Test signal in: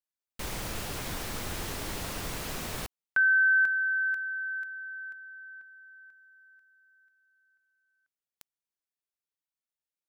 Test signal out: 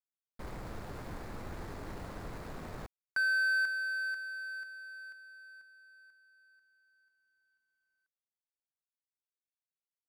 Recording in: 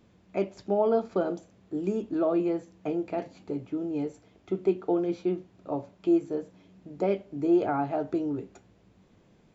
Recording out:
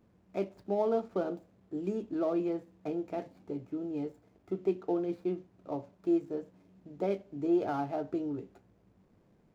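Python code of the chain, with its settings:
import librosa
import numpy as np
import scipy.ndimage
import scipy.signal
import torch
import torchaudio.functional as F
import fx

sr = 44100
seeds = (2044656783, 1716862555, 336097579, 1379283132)

y = scipy.signal.medfilt(x, 15)
y = y * 10.0 ** (-5.0 / 20.0)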